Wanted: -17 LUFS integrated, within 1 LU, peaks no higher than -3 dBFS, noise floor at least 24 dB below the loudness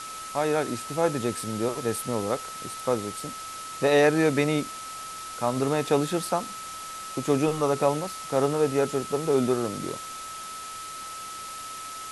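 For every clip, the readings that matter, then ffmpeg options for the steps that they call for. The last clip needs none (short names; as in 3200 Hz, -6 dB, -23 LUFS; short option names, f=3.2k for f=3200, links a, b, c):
steady tone 1300 Hz; tone level -37 dBFS; noise floor -38 dBFS; noise floor target -52 dBFS; loudness -27.5 LUFS; peak -9.0 dBFS; loudness target -17.0 LUFS
-> -af "bandreject=f=1.3k:w=30"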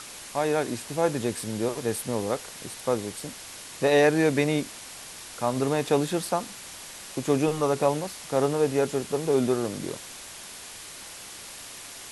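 steady tone none; noise floor -42 dBFS; noise floor target -51 dBFS
-> -af "afftdn=nr=9:nf=-42"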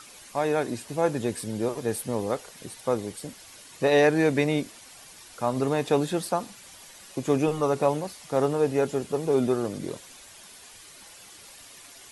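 noise floor -49 dBFS; noise floor target -51 dBFS
-> -af "afftdn=nr=6:nf=-49"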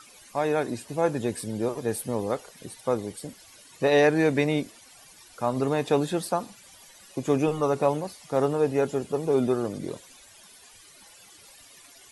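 noise floor -52 dBFS; loudness -26.5 LUFS; peak -9.0 dBFS; loudness target -17.0 LUFS
-> -af "volume=9.5dB,alimiter=limit=-3dB:level=0:latency=1"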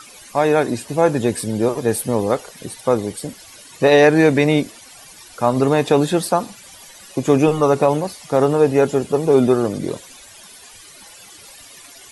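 loudness -17.5 LUFS; peak -3.0 dBFS; noise floor -43 dBFS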